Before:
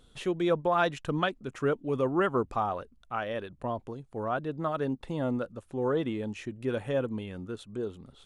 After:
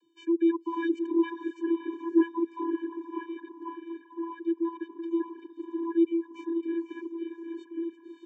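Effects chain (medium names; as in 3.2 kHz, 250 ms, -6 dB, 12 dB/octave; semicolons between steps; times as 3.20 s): echo that smears into a reverb 585 ms, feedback 46%, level -5.5 dB; vocoder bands 32, square 334 Hz; reverb removal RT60 0.62 s; trim +1.5 dB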